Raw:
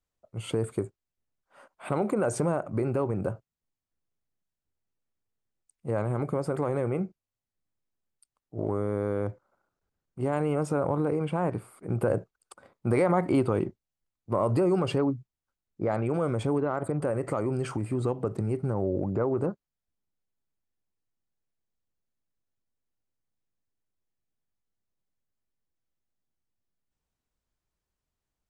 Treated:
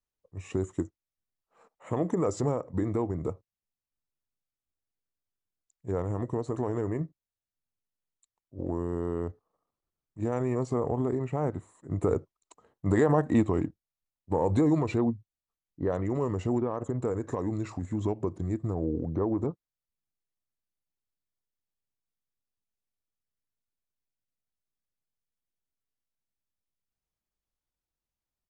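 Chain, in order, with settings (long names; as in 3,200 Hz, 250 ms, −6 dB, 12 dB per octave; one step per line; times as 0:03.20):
pitch shifter −3 semitones
expander for the loud parts 1.5 to 1, over −37 dBFS
level +1.5 dB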